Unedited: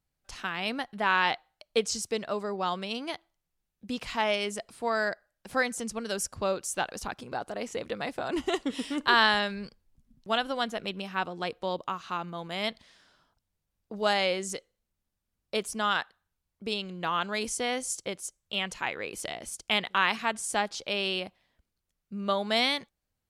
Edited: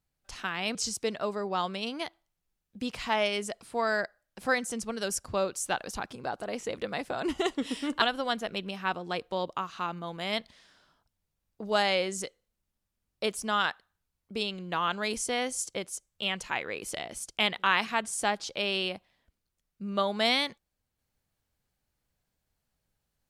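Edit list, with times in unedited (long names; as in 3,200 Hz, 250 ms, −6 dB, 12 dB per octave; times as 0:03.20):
0:00.75–0:01.83: remove
0:09.10–0:10.33: remove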